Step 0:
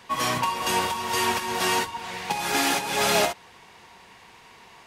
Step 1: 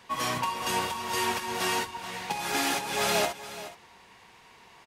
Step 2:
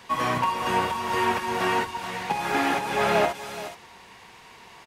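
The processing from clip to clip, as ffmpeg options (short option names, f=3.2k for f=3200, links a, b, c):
-af "aecho=1:1:424:0.188,volume=-4.5dB"
-filter_complex "[0:a]acrossover=split=2500[a][b];[b]acompressor=threshold=-47dB:ratio=4:attack=1:release=60[c];[a][c]amix=inputs=2:normalize=0,volume=6dB"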